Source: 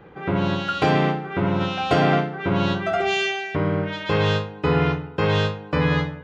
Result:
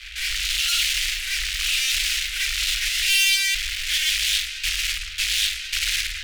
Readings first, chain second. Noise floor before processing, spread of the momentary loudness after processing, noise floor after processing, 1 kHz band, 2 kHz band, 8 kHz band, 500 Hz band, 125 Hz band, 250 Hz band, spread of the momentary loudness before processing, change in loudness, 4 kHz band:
-40 dBFS, 7 LU, -34 dBFS, -22.0 dB, +3.5 dB, no reading, under -40 dB, under -20 dB, under -40 dB, 4 LU, +1.5 dB, +11.0 dB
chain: fuzz box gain 41 dB, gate -48 dBFS; inverse Chebyshev band-stop 110–990 Hz, stop band 50 dB; loudspeaker Doppler distortion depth 0.84 ms

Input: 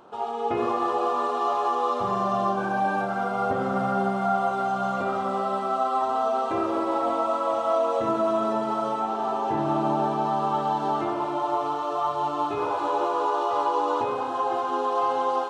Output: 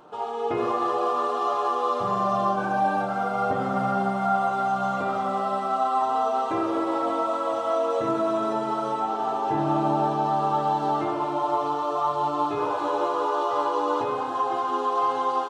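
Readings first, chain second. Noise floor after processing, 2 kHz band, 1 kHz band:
-29 dBFS, -0.5 dB, +0.5 dB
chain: comb 6.6 ms, depth 39%

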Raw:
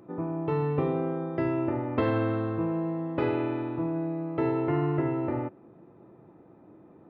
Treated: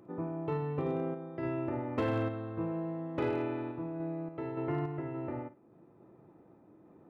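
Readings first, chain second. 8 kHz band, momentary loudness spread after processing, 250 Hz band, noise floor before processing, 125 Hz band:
no reading, 6 LU, -7.5 dB, -55 dBFS, -6.5 dB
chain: random-step tremolo, depth 55%; overload inside the chain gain 20 dB; flutter echo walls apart 9.1 m, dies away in 0.21 s; trim -4.5 dB

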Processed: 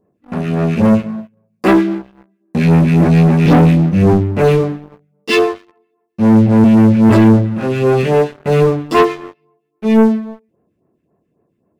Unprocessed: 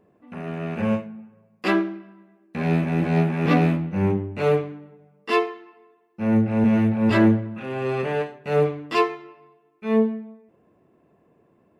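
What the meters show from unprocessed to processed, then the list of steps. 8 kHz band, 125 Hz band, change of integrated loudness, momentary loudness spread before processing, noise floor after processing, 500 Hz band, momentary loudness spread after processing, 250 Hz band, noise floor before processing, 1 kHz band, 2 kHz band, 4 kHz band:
no reading, +12.5 dB, +10.5 dB, 16 LU, -67 dBFS, +9.5 dB, 14 LU, +11.0 dB, -63 dBFS, +8.5 dB, +6.5 dB, +9.5 dB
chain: phase shifter stages 2, 3.7 Hz, lowest notch 750–4500 Hz; thinning echo 93 ms, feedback 18%, high-pass 820 Hz, level -20 dB; waveshaping leveller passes 3; trim +3.5 dB

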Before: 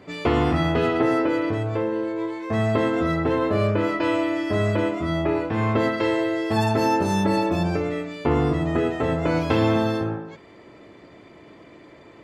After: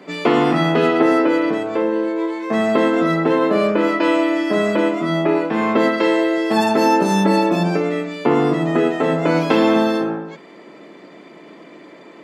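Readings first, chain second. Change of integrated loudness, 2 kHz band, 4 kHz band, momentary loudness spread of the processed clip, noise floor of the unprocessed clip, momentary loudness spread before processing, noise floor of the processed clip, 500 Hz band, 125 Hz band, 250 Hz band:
+5.5 dB, +6.0 dB, +6.0 dB, 5 LU, -48 dBFS, 5 LU, -42 dBFS, +6.0 dB, -1.5 dB, +6.0 dB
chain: steep high-pass 160 Hz 48 dB/octave; trim +6 dB

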